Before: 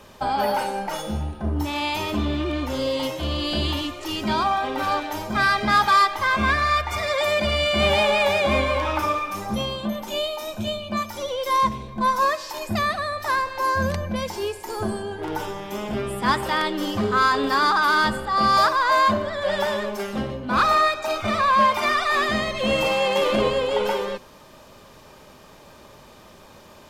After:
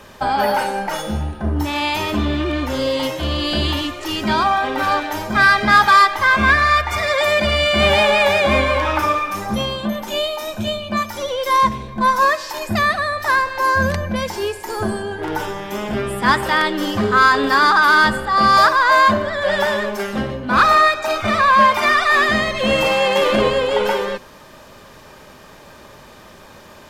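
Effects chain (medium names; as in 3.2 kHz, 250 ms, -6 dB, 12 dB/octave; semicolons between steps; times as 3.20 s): peaking EQ 1.7 kHz +5 dB 0.55 oct; trim +4.5 dB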